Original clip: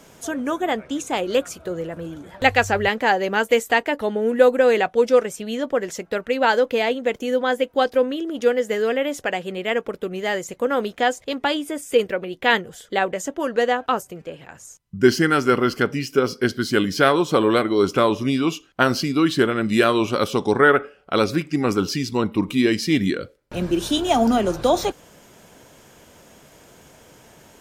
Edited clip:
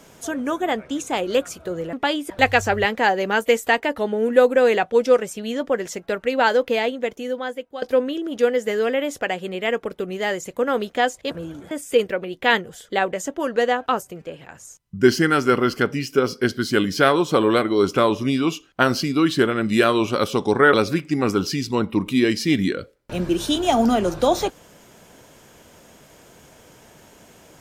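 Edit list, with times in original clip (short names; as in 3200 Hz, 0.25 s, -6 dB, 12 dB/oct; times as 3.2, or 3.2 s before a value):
1.93–2.33 swap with 11.34–11.71
6.73–7.85 fade out, to -16 dB
20.73–21.15 cut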